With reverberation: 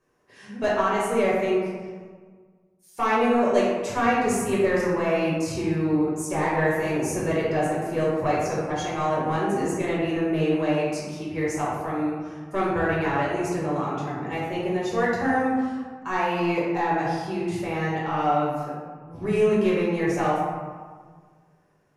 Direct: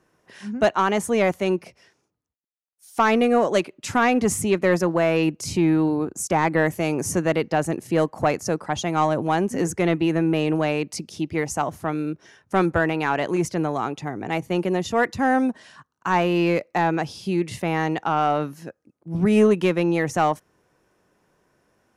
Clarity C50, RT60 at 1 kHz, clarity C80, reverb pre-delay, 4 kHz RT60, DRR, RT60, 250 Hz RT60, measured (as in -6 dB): -0.5 dB, 1.6 s, 2.0 dB, 5 ms, 0.85 s, -7.0 dB, 1.6 s, 1.8 s